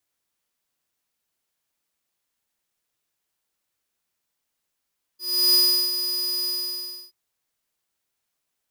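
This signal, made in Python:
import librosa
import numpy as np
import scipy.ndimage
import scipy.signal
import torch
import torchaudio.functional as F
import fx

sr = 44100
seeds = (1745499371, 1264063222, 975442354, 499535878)

y = fx.adsr_tone(sr, wave='square', hz=4940.0, attack_ms=346.0, decay_ms=367.0, sustain_db=-9.5, held_s=1.28, release_ms=647.0, level_db=-16.5)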